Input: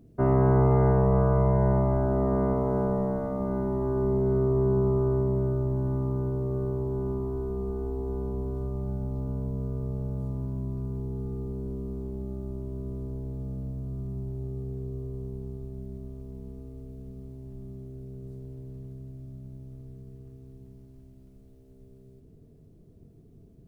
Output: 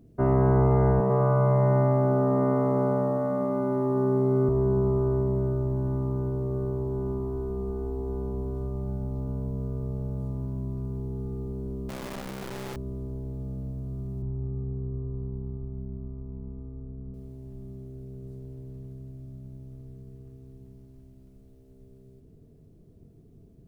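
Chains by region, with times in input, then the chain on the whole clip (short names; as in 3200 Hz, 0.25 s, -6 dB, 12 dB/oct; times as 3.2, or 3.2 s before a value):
1–4.49 HPF 140 Hz 24 dB/oct + feedback echo 0.1 s, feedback 53%, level -4 dB
11.89–12.76 infinite clipping + bell 63 Hz -14 dB 0.38 oct
14.22–17.14 LPF 1500 Hz 24 dB/oct + comb 0.9 ms, depth 45%
whole clip: dry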